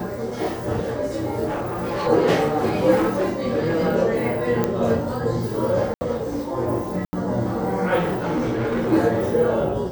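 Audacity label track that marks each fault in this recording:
1.450000	2.080000	clipping −22 dBFS
2.950000	3.890000	clipping −16 dBFS
4.640000	4.640000	click −8 dBFS
5.940000	6.010000	drop-out 70 ms
7.050000	7.130000	drop-out 80 ms
7.980000	8.930000	clipping −19.5 dBFS

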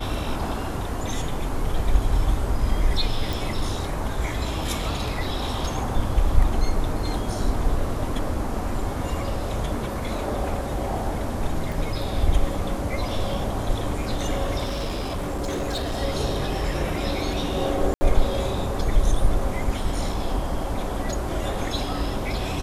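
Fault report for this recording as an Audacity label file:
3.330000	3.330000	click
11.720000	11.720000	drop-out 2.4 ms
14.640000	16.000000	clipping −23.5 dBFS
17.940000	18.010000	drop-out 70 ms

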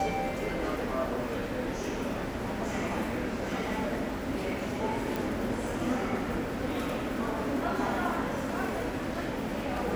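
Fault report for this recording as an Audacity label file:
5.160000	5.160000	click

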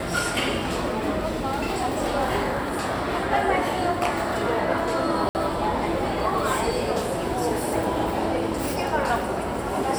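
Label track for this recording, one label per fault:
5.290000	5.350000	drop-out 59 ms

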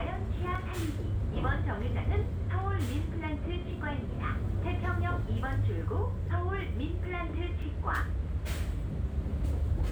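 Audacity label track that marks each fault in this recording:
0.550000	0.550000	drop-out 4.3 ms
7.620000	7.620000	drop-out 4.2 ms

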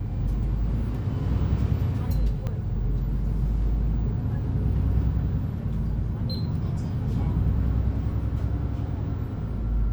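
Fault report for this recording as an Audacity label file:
2.470000	2.470000	click −20 dBFS

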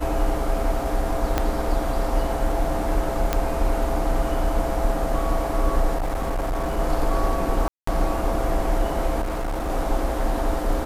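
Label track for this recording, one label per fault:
1.380000	1.380000	click −7 dBFS
3.330000	3.330000	click −7 dBFS
5.970000	6.790000	clipping −21 dBFS
7.680000	7.870000	drop-out 194 ms
9.210000	9.700000	clipping −23 dBFS

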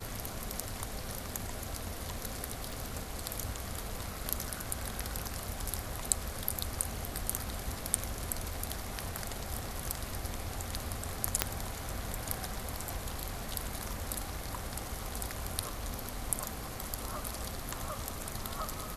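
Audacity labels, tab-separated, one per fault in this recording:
2.720000	2.720000	click
11.420000	11.420000	click −6 dBFS

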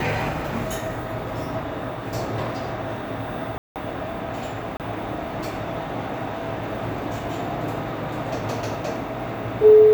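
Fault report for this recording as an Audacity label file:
3.580000	3.760000	drop-out 178 ms
4.770000	4.800000	drop-out 28 ms

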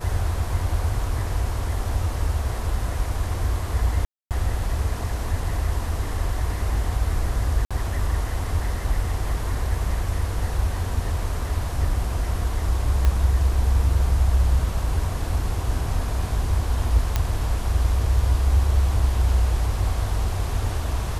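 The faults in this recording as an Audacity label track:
4.050000	4.310000	drop-out 258 ms
7.650000	7.710000	drop-out 56 ms
13.050000	13.050000	click −10 dBFS
17.160000	17.160000	click −7 dBFS

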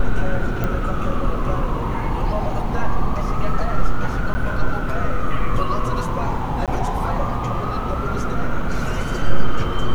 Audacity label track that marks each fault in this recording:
0.640000	0.640000	click −11 dBFS
4.340000	4.350000	drop-out 10 ms
6.660000	6.680000	drop-out 17 ms

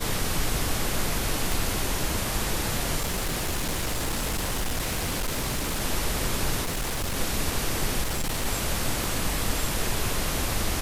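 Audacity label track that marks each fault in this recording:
1.520000	1.520000	click
2.990000	5.820000	clipping −23.5 dBFS
6.620000	7.170000	clipping −25 dBFS
8.020000	8.460000	clipping −23.5 dBFS
9.040000	9.040000	click

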